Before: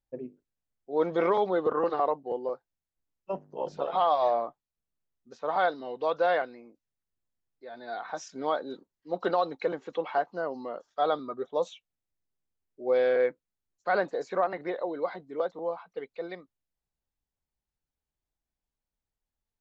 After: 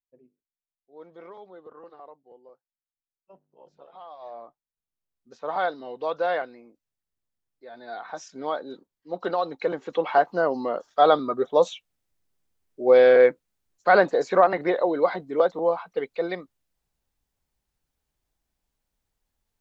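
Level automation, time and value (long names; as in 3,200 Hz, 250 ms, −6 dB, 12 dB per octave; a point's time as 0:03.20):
0:04.14 −19.5 dB
0:04.44 −11 dB
0:05.36 0 dB
0:09.31 0 dB
0:10.31 +9.5 dB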